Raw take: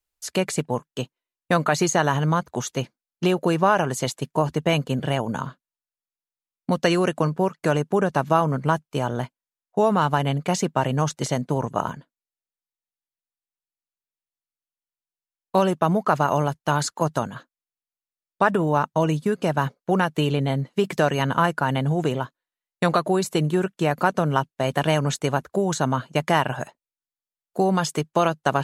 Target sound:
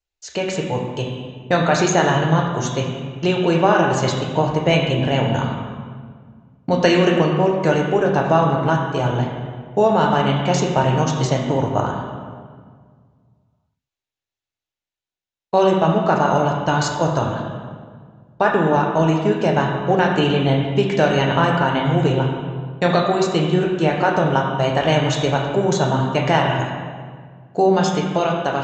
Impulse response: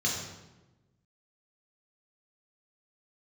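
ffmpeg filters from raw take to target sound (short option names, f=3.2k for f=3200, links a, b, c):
-filter_complex "[0:a]aresample=16000,aresample=44100,dynaudnorm=f=140:g=11:m=6.5dB,asplit=2[a][b];[1:a]atrim=start_sample=2205,asetrate=23373,aresample=44100[c];[b][c]afir=irnorm=-1:irlink=0,volume=-14.5dB[d];[a][d]amix=inputs=2:normalize=0,atempo=1"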